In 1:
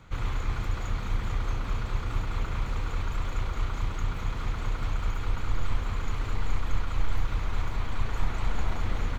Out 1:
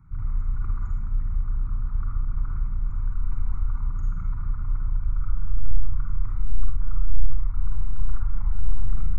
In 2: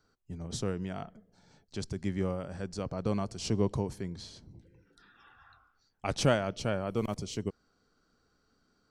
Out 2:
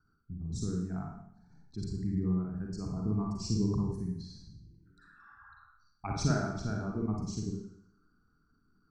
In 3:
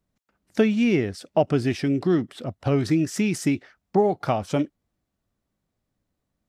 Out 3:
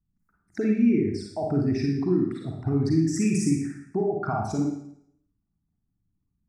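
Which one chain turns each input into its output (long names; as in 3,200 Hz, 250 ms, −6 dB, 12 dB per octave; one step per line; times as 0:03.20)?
spectral envelope exaggerated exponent 2
phaser with its sweep stopped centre 1,300 Hz, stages 4
four-comb reverb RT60 0.69 s, DRR −1 dB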